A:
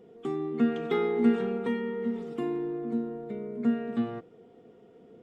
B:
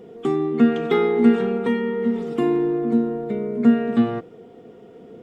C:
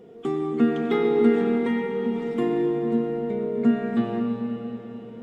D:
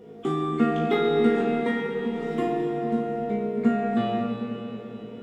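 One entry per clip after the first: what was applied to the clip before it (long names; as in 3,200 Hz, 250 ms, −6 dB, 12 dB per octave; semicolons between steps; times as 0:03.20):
speech leveller 2 s; level +8.5 dB
comb and all-pass reverb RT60 4.9 s, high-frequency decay 0.85×, pre-delay 55 ms, DRR 2.5 dB; level −5 dB
flutter between parallel walls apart 3.2 metres, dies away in 0.4 s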